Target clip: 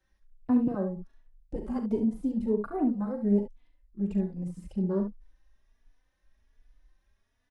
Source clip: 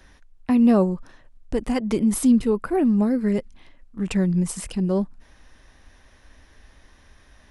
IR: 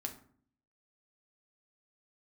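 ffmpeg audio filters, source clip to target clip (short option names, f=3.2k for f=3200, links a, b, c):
-filter_complex "[0:a]deesser=0.7,afwtdn=0.0398,asettb=1/sr,asplit=3[a][b][c];[a]atrim=end=0.674[d];[b]atrim=start=0.67:end=1.56,asetpts=PTS-STARTPTS,afade=t=in:d=0.004:c=qsin,afade=t=out:st=0.886:d=0.004:c=qsin,acrossover=split=120[e][f];[f]acompressor=threshold=-22dB:ratio=3[g];[e][g]amix=inputs=2:normalize=0[h];[c]atrim=start=1.556[i];[d][h]acrossfade=d=0.004:c1=hsin:c2=qsin[j];[j][i]acrossfade=d=0.004:c1=qsin:c2=hsin,asplit=2[k][l];[l]aecho=0:1:40|69:0.335|0.398[m];[k][m]amix=inputs=2:normalize=0,asplit=2[n][o];[o]adelay=3.4,afreqshift=1.3[p];[n][p]amix=inputs=2:normalize=1,volume=-4.5dB"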